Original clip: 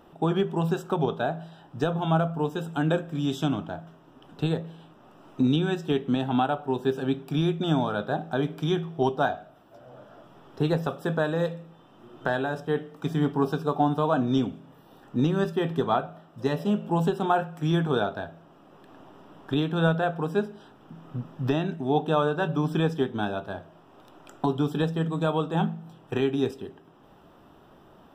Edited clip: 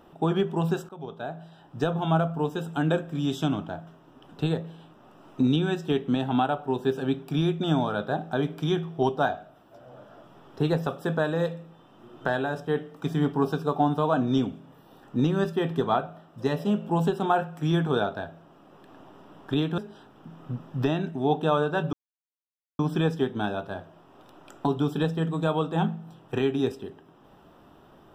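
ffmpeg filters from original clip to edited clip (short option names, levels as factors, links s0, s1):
-filter_complex "[0:a]asplit=4[s0][s1][s2][s3];[s0]atrim=end=0.89,asetpts=PTS-STARTPTS,afade=t=out:st=0.886:d=0.004:c=hsin:silence=0.0891251[s4];[s1]atrim=start=0.89:end=19.782,asetpts=PTS-STARTPTS,afade=t=in:d=0.96:silence=0.0891251[s5];[s2]atrim=start=20.428:end=22.58,asetpts=PTS-STARTPTS,afade=t=out:st=2.148:d=0.004:c=hsin,apad=pad_dur=0.86[s6];[s3]atrim=start=22.58,asetpts=PTS-STARTPTS,afade=t=in:d=0.004:c=hsin[s7];[s4][s5]concat=n=2:v=0:a=1[s8];[s6][s7]concat=n=2:v=0:a=1[s9];[s8][s9]acrossfade=d=0.004:c1=hsin:c2=hsin"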